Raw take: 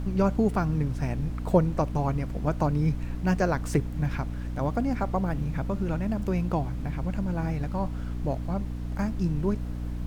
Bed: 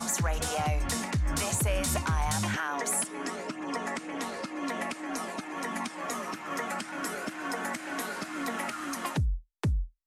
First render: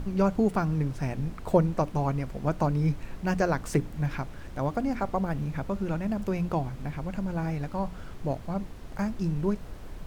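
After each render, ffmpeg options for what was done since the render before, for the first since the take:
-af "bandreject=f=60:t=h:w=6,bandreject=f=120:t=h:w=6,bandreject=f=180:t=h:w=6,bandreject=f=240:t=h:w=6,bandreject=f=300:t=h:w=6"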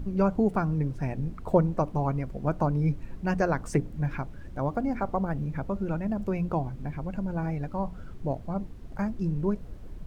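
-af "afftdn=nr=10:nf=-42"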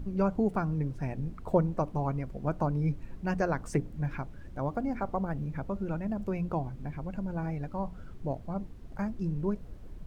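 -af "volume=-3.5dB"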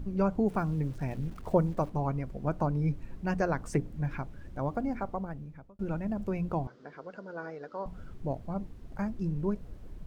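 -filter_complex "[0:a]asettb=1/sr,asplit=3[a][b][c];[a]atrim=end=0.474[d];[b]atrim=start=0.47:end=1.9,asetpts=PTS-STARTPTS,afade=t=in:d=0.004:c=qsin,afade=t=out:st=1.426:d=0.004:c=qsin,aeval=exprs='val(0)*gte(abs(val(0)),0.00335)':c=same[e];[c]atrim=start=1.896[f];[d][e]acrossfade=d=0.004:c1=hsin:c2=qsin[g];[g][f]acrossfade=d=0.004:c1=qsin:c2=hsin,asettb=1/sr,asplit=3[h][i][j];[h]atrim=end=6.674[k];[i]atrim=start=6.67:end=7.86,asetpts=PTS-STARTPTS,afade=t=in:d=0.004:c=qsin,afade=t=out:st=1.186:d=0.004:c=qsin,highpass=430,equalizer=f=450:t=q:w=4:g=9,equalizer=f=820:t=q:w=4:g=-6,equalizer=f=1.4k:t=q:w=4:g=7,equalizer=f=2.4k:t=q:w=4:g=-9,equalizer=f=4.9k:t=q:w=4:g=4,lowpass=f=6.2k:w=0.5412,lowpass=f=6.2k:w=1.3066[l];[j]atrim=start=7.856[m];[k][l]acrossfade=d=0.004:c1=hsin:c2=qsin[n];[n][m]acrossfade=d=0.004:c1=qsin:c2=hsin,asplit=2[o][p];[o]atrim=end=5.79,asetpts=PTS-STARTPTS,afade=t=out:st=4.86:d=0.93[q];[p]atrim=start=5.79,asetpts=PTS-STARTPTS,afade=t=in:d=0.004:c=hsin[r];[q][r]concat=n=2:v=0:a=1"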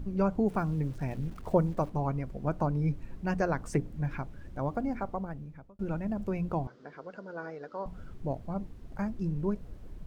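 -af anull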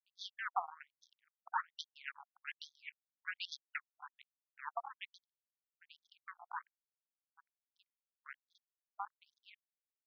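-af "acrusher=bits=3:mix=0:aa=0.5,afftfilt=real='re*between(b*sr/1024,930*pow(4700/930,0.5+0.5*sin(2*PI*1.2*pts/sr))/1.41,930*pow(4700/930,0.5+0.5*sin(2*PI*1.2*pts/sr))*1.41)':imag='im*between(b*sr/1024,930*pow(4700/930,0.5+0.5*sin(2*PI*1.2*pts/sr))/1.41,930*pow(4700/930,0.5+0.5*sin(2*PI*1.2*pts/sr))*1.41)':win_size=1024:overlap=0.75"

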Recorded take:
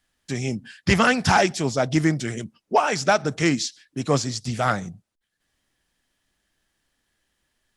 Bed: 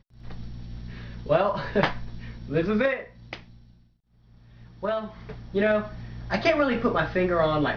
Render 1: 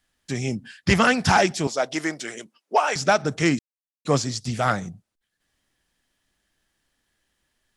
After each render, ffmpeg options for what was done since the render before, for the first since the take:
-filter_complex "[0:a]asettb=1/sr,asplit=3[a][b][c];[a]atrim=end=1.674[d];[b]atrim=start=1.67:end=2.96,asetpts=PTS-STARTPTS,afade=t=in:d=0.004:c=qsin,afade=t=out:st=1.286:d=0.004:c=qsin,highpass=450[e];[c]atrim=start=2.956[f];[d][e]acrossfade=d=0.004:c1=hsin:c2=qsin[g];[g][f]acrossfade=d=0.004:c1=qsin:c2=hsin,asplit=3[h][i][j];[h]atrim=end=3.59,asetpts=PTS-STARTPTS,afade=t=out:st=3.586:d=0.004:c=hsin[k];[i]atrim=start=3.59:end=4.05,asetpts=PTS-STARTPTS,volume=0[l];[j]atrim=start=4.05,asetpts=PTS-STARTPTS,afade=t=in:d=0.004:c=hsin[m];[k][l][m]concat=n=3:v=0:a=1"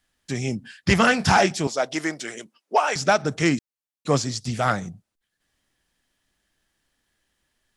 -filter_complex "[0:a]asettb=1/sr,asplit=3[a][b][c];[a]atrim=end=0.974[d];[b]atrim=start=0.97:end=1.58,asetpts=PTS-STARTPTS,afade=t=in:d=0.004:c=qsin,afade=t=out:st=0.606:d=0.004:c=qsin,asplit=2[e][f];[f]adelay=26,volume=-9.5dB[g];[e][g]amix=inputs=2:normalize=0,atrim=end_sample=26901[h];[c]atrim=start=1.576[i];[d][h]acrossfade=d=0.004:c1=hsin:c2=qsin[j];[j][i]acrossfade=d=0.004:c1=qsin:c2=hsin"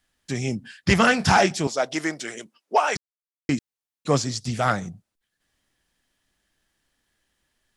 -filter_complex "[0:a]asplit=3[a][b][c];[a]atrim=end=2.97,asetpts=PTS-STARTPTS,afade=t=out:st=2.966:d=0.004:c=hsin[d];[b]atrim=start=2.97:end=3.49,asetpts=PTS-STARTPTS,volume=0[e];[c]atrim=start=3.49,asetpts=PTS-STARTPTS,afade=t=in:d=0.004:c=hsin[f];[d][e][f]concat=n=3:v=0:a=1"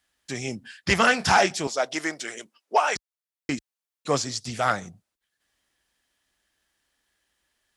-af "highpass=44,equalizer=f=140:t=o:w=2.4:g=-8.5"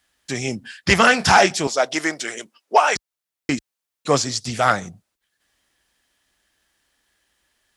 -af "volume=6dB,alimiter=limit=-1dB:level=0:latency=1"

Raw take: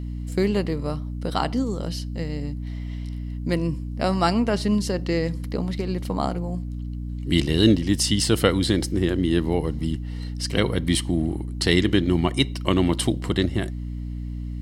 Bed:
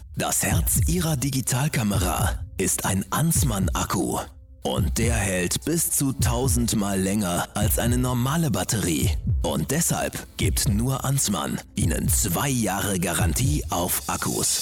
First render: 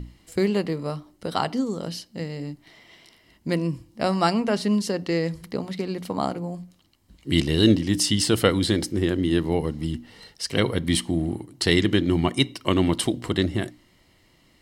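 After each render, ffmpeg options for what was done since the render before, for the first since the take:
-af "bandreject=f=60:t=h:w=6,bandreject=f=120:t=h:w=6,bandreject=f=180:t=h:w=6,bandreject=f=240:t=h:w=6,bandreject=f=300:t=h:w=6"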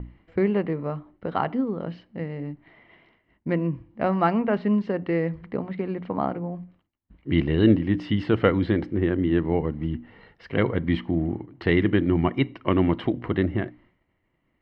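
-af "agate=range=-33dB:threshold=-50dB:ratio=3:detection=peak,lowpass=f=2.3k:w=0.5412,lowpass=f=2.3k:w=1.3066"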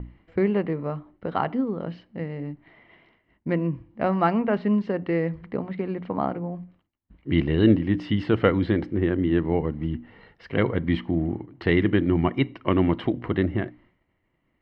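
-af anull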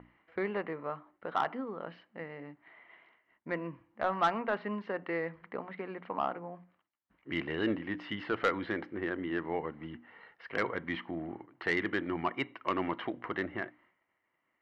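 -af "bandpass=f=1.4k:t=q:w=0.98:csg=0,asoftclip=type=tanh:threshold=-19dB"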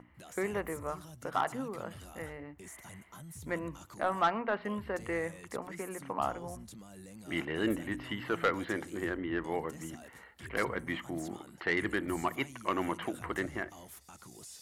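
-filter_complex "[1:a]volume=-27dB[a];[0:a][a]amix=inputs=2:normalize=0"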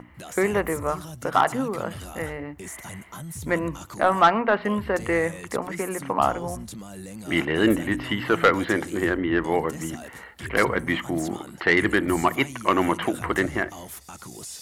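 -af "volume=11.5dB"

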